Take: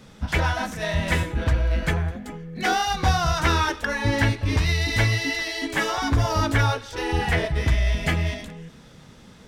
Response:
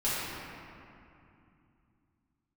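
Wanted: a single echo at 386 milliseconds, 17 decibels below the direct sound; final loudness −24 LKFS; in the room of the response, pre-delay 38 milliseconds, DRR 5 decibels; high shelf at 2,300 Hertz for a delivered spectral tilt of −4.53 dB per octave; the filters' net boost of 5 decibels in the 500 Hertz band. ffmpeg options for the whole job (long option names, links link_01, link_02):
-filter_complex "[0:a]equalizer=frequency=500:width_type=o:gain=6,highshelf=frequency=2300:gain=5.5,aecho=1:1:386:0.141,asplit=2[link_01][link_02];[1:a]atrim=start_sample=2205,adelay=38[link_03];[link_02][link_03]afir=irnorm=-1:irlink=0,volume=-15dB[link_04];[link_01][link_04]amix=inputs=2:normalize=0,volume=-4dB"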